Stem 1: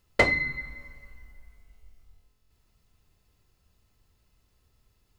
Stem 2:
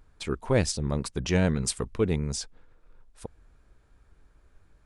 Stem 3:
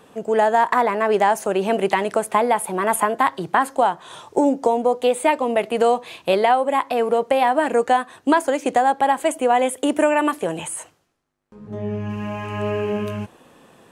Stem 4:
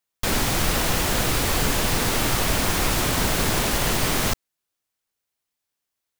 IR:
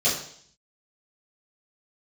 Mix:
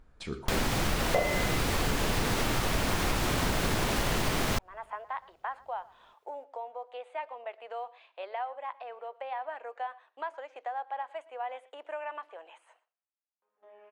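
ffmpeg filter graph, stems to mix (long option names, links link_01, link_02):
-filter_complex "[0:a]equalizer=frequency=680:width=0.75:gain=14,adelay=950,volume=-9dB,asplit=2[link_01][link_02];[link_02]volume=-10dB[link_03];[1:a]acompressor=threshold=-37dB:ratio=2.5,volume=-0.5dB,asplit=4[link_04][link_05][link_06][link_07];[link_05]volume=-20dB[link_08];[link_06]volume=-17dB[link_09];[2:a]highpass=frequency=590:width=0.5412,highpass=frequency=590:width=1.3066,agate=range=-9dB:threshold=-48dB:ratio=16:detection=peak,lowpass=3200,adelay=1900,volume=-17.5dB,asplit=2[link_10][link_11];[link_11]volume=-21dB[link_12];[3:a]adelay=250,volume=2dB[link_13];[link_07]apad=whole_len=697397[link_14];[link_10][link_14]sidechaincompress=threshold=-54dB:ratio=8:attack=5.1:release=585[link_15];[4:a]atrim=start_sample=2205[link_16];[link_03][link_08]amix=inputs=2:normalize=0[link_17];[link_17][link_16]afir=irnorm=-1:irlink=0[link_18];[link_09][link_12]amix=inputs=2:normalize=0,aecho=0:1:117:1[link_19];[link_01][link_04][link_15][link_13][link_18][link_19]amix=inputs=6:normalize=0,highshelf=frequency=5600:gain=-8.5,acompressor=threshold=-27dB:ratio=3"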